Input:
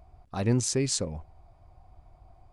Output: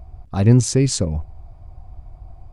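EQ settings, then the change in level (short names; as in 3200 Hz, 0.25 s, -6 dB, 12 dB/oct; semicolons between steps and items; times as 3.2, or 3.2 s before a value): low shelf 140 Hz +5.5 dB; low shelf 330 Hz +6.5 dB; +5.0 dB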